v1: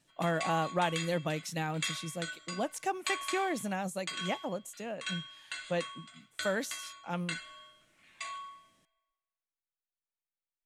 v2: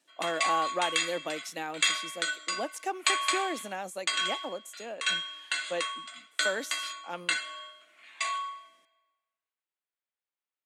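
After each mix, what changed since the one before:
background +9.5 dB; master: add HPF 270 Hz 24 dB/oct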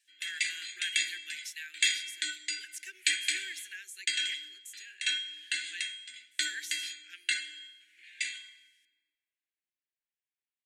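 speech: add steep high-pass 620 Hz 36 dB/oct; master: add Chebyshev band-stop 380–1600 Hz, order 5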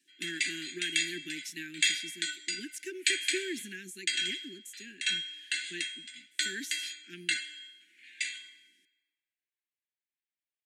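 speech: remove steep high-pass 620 Hz 36 dB/oct

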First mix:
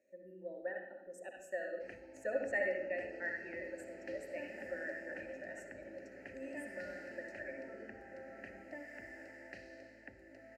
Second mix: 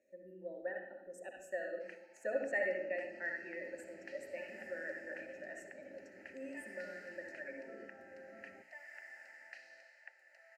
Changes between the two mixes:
first sound: add inverse Chebyshev high-pass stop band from 180 Hz, stop band 70 dB; second sound: send off

